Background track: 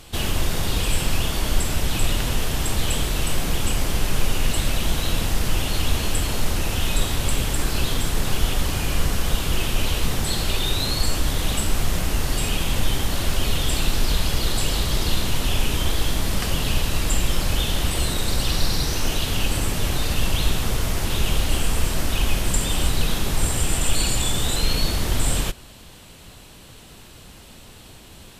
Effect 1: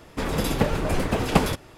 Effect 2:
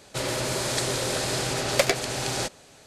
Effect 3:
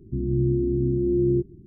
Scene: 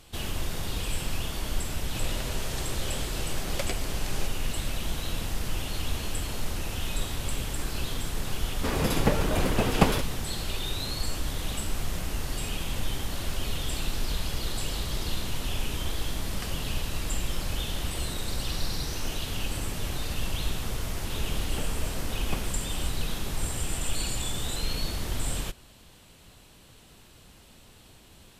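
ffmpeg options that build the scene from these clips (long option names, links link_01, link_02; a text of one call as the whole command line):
ffmpeg -i bed.wav -i cue0.wav -i cue1.wav -filter_complex "[1:a]asplit=2[link_01][link_02];[0:a]volume=-9dB[link_03];[2:a]atrim=end=2.86,asetpts=PTS-STARTPTS,volume=-12.5dB,afade=type=in:duration=0.004:curve=hsin,afade=type=out:start_time=2.856:duration=0.004:curve=hsin,adelay=1800[link_04];[link_01]atrim=end=1.77,asetpts=PTS-STARTPTS,volume=-2dB,afade=type=in:duration=0.004:curve=hsin,afade=type=out:start_time=1.766:duration=0.004:curve=hsin,adelay=8460[link_05];[link_02]atrim=end=1.77,asetpts=PTS-STARTPTS,volume=-17dB,afade=type=in:duration=0.004:curve=hsin,afade=type=out:start_time=1.766:duration=0.004:curve=hsin,adelay=20970[link_06];[link_03][link_04][link_05][link_06]amix=inputs=4:normalize=0" out.wav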